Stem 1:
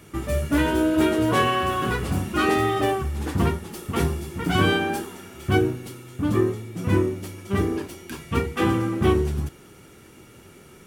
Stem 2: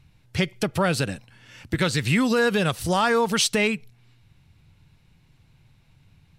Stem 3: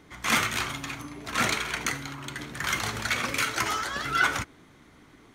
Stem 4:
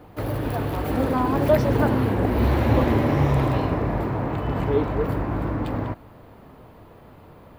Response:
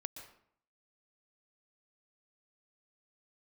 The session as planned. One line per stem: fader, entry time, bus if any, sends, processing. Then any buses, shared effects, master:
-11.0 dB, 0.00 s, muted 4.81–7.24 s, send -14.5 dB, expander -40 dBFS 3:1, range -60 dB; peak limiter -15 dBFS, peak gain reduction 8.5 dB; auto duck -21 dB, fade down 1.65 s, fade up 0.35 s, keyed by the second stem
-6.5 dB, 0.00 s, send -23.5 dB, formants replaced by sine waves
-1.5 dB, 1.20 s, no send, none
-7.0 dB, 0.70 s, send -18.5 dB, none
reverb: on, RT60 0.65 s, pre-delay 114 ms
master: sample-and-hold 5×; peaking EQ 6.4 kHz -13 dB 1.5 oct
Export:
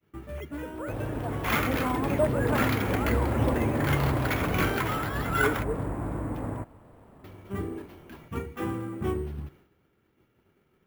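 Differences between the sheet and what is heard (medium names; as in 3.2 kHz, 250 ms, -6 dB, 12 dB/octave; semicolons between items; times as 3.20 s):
stem 1: missing peak limiter -15 dBFS, peak gain reduction 8.5 dB; stem 2 -6.5 dB -> -16.0 dB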